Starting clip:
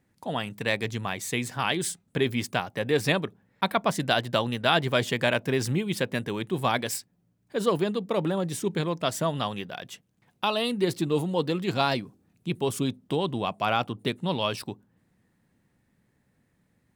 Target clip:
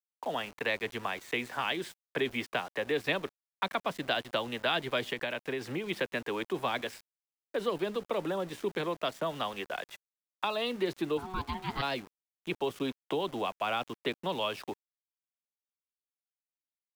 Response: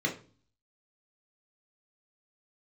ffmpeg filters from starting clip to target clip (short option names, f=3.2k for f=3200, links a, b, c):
-filter_complex "[0:a]acrossover=split=340 3000:gain=0.0891 1 0.0891[a][b][c];[a][b][c]amix=inputs=3:normalize=0,acrossover=split=300|550|6700[d][e][f][g];[g]alimiter=level_in=28dB:limit=-24dB:level=0:latency=1:release=129,volume=-28dB[h];[d][e][f][h]amix=inputs=4:normalize=0,acrossover=split=260|3000[i][j][k];[j]acompressor=threshold=-37dB:ratio=4[l];[i][l][k]amix=inputs=3:normalize=0,aeval=exprs='val(0)*gte(abs(val(0)),0.00316)':c=same,asettb=1/sr,asplit=3[m][n][o];[m]atrim=end=5.064[p];[n]atrim=start=5.06:end=5.84,asetpts=PTS-STARTPTS,afade=t=in:d=0.004:c=qsin,afade=t=out:st=0.776:d=0.004:c=qsin,acompressor=threshold=-35dB:ratio=6[q];[o]atrim=start=5.836[r];[p][q]acrossfade=d=0.004:c1=hsin:c2=qsin[s];[s][r]acrossfade=d=0.004:c1=qsin:c2=hsin,asettb=1/sr,asplit=3[t][u][v];[t]atrim=end=9.874[w];[u]atrim=start=9.87:end=10.62,asetpts=PTS-STARTPTS,afade=t=in:d=0.004:c=qsin,afade=t=out:st=0.746:d=0.004:c=qsin,bandreject=f=3k:w=5.8[x];[v]atrim=start=10.616[y];[w][x]acrossfade=d=0.004:c1=hsin:c2=qsin[z];[z][y]acrossfade=d=0.004:c1=qsin:c2=hsin,asplit=3[aa][ab][ac];[aa]afade=t=out:st=11.17:d=0.02[ad];[ab]aeval=exprs='val(0)*sin(2*PI*560*n/s)':c=same,afade=t=in:st=11.17:d=0.02,afade=t=out:st=11.81:d=0.02[ae];[ac]afade=t=in:st=11.81:d=0.02[af];[ad][ae][af]amix=inputs=3:normalize=0,volume=4.5dB"